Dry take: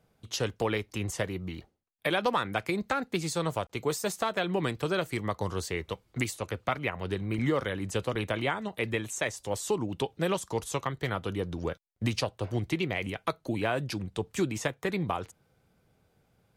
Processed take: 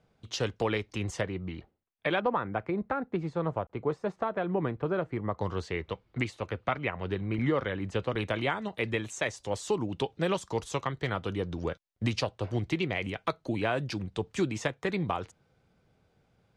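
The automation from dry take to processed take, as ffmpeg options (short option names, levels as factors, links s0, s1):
-af "asetnsamples=n=441:p=0,asendcmd='1.21 lowpass f 3000;2.2 lowpass f 1300;5.38 lowpass f 3300;8.15 lowpass f 6200',lowpass=5900"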